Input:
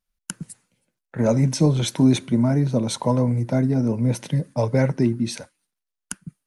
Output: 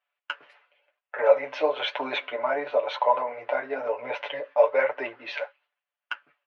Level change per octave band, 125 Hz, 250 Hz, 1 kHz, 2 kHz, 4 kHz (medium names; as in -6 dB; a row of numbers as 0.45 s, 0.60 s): under -40 dB, -24.0 dB, +5.5 dB, +6.5 dB, -2.0 dB